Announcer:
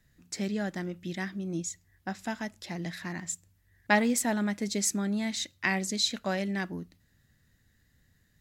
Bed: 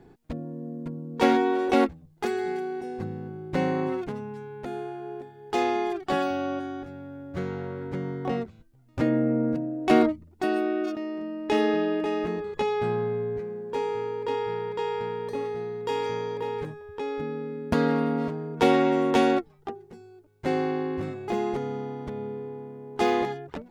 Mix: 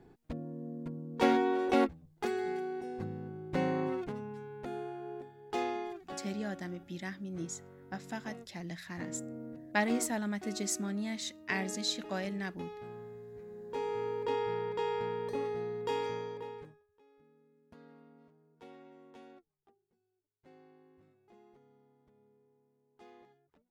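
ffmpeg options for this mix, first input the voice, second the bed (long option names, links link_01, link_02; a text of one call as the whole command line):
ffmpeg -i stem1.wav -i stem2.wav -filter_complex "[0:a]adelay=5850,volume=-6dB[link_01];[1:a]volume=9dB,afade=type=out:start_time=5.24:duration=0.95:silence=0.211349,afade=type=in:start_time=13.31:duration=0.79:silence=0.177828,afade=type=out:start_time=15.81:duration=1.06:silence=0.0354813[link_02];[link_01][link_02]amix=inputs=2:normalize=0" out.wav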